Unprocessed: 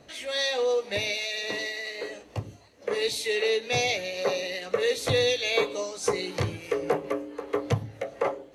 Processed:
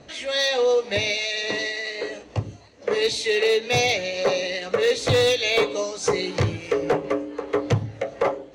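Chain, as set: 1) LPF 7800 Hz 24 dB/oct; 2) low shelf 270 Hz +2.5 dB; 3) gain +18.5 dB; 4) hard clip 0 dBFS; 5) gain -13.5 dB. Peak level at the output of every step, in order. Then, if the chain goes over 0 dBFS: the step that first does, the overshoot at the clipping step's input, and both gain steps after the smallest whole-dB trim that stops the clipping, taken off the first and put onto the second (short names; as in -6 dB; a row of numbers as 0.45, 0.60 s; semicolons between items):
-10.5, -10.0, +8.5, 0.0, -13.5 dBFS; step 3, 8.5 dB; step 3 +9.5 dB, step 5 -4.5 dB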